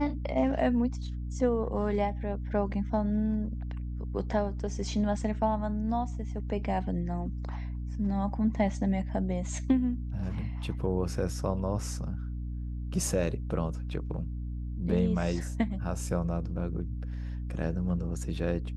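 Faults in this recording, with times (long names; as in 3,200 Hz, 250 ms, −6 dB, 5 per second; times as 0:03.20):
mains hum 60 Hz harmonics 5 −35 dBFS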